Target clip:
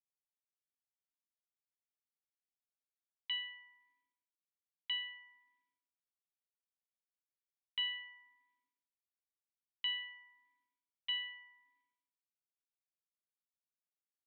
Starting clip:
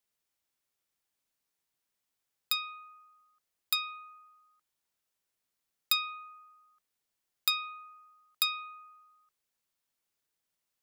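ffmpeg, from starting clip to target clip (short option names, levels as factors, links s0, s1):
-filter_complex "[0:a]agate=range=0.0224:threshold=0.00158:ratio=3:detection=peak,asplit=2[s0][s1];[s1]alimiter=limit=0.0708:level=0:latency=1:release=121,volume=0.708[s2];[s0][s2]amix=inputs=2:normalize=0,asetrate=34839,aresample=44100,asplit=3[s3][s4][s5];[s3]bandpass=f=270:t=q:w=8,volume=1[s6];[s4]bandpass=f=2290:t=q:w=8,volume=0.501[s7];[s5]bandpass=f=3010:t=q:w=8,volume=0.355[s8];[s6][s7][s8]amix=inputs=3:normalize=0,asplit=2[s9][s10];[s10]highpass=f=720:p=1,volume=2.51,asoftclip=type=tanh:threshold=0.0473[s11];[s9][s11]amix=inputs=2:normalize=0,lowpass=f=1200:p=1,volume=0.501,atempo=0.96,aresample=11025,aresample=44100,volume=2"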